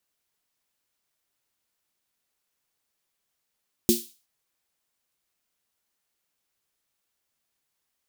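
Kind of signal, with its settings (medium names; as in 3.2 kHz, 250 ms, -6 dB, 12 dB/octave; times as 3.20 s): snare drum length 0.37 s, tones 230 Hz, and 350 Hz, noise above 3.3 kHz, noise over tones -5 dB, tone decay 0.21 s, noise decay 0.37 s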